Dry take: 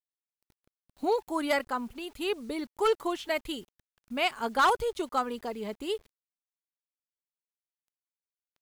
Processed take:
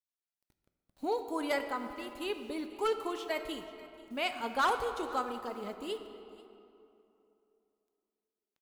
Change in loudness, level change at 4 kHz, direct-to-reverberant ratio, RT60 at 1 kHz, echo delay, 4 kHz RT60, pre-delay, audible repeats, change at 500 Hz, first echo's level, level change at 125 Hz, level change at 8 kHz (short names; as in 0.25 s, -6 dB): -4.5 dB, -5.0 dB, 7.0 dB, 2.8 s, 0.487 s, 1.6 s, 3 ms, 1, -5.0 dB, -20.0 dB, n/a, -5.0 dB